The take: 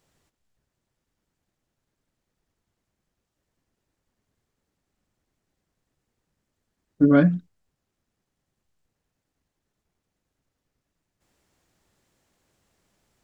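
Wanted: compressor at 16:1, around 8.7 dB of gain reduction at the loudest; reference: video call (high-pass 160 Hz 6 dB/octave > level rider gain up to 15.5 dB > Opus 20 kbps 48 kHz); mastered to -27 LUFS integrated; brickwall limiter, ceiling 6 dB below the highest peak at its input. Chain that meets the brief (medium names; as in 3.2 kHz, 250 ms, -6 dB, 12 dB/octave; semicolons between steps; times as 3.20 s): compression 16:1, threshold -20 dBFS; peak limiter -19.5 dBFS; high-pass 160 Hz 6 dB/octave; level rider gain up to 15.5 dB; trim +5 dB; Opus 20 kbps 48 kHz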